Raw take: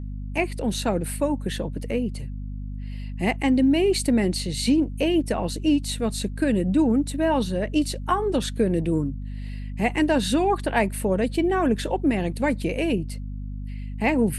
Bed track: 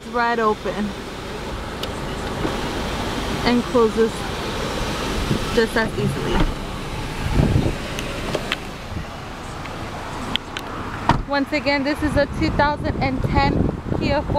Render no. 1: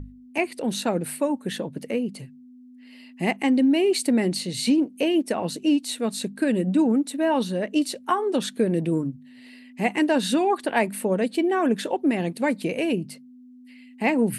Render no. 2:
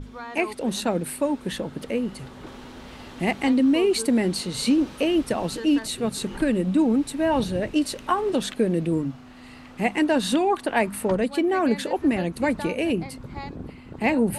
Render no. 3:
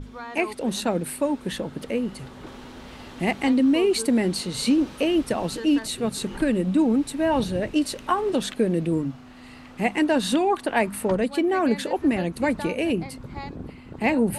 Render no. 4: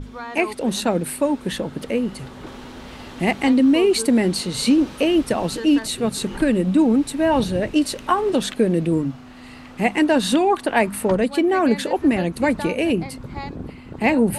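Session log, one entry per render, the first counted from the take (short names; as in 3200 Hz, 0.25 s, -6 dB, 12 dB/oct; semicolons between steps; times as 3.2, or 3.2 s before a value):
notches 50/100/150/200 Hz
add bed track -18 dB
nothing audible
gain +4 dB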